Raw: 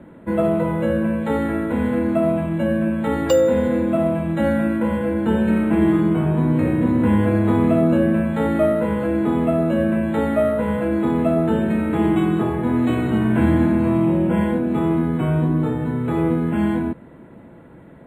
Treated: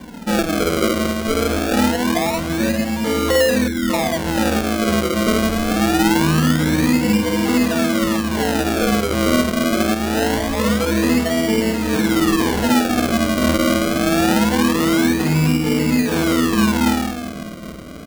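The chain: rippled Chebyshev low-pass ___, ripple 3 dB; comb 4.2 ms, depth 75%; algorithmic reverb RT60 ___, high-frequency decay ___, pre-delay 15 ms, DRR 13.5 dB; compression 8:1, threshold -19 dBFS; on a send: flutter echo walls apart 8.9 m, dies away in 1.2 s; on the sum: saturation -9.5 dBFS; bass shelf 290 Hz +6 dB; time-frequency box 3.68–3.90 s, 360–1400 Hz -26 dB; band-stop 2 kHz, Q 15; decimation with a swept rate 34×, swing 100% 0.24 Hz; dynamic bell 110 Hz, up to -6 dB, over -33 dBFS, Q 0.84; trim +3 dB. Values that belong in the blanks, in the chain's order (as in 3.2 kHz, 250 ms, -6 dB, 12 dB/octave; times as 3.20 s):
6 kHz, 4.3 s, 0.85×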